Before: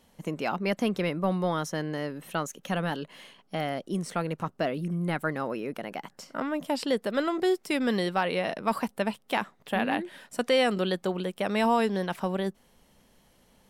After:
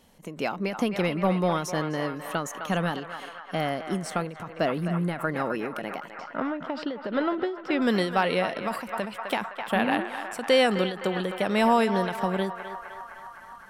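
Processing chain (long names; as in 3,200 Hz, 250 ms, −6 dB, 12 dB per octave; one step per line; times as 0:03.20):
0:06.16–0:07.82: high-frequency loss of the air 240 metres
on a send: feedback echo with a band-pass in the loop 257 ms, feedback 82%, band-pass 1,300 Hz, level −7.5 dB
on the sum: every ending faded ahead of time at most 100 dB per second
level +3 dB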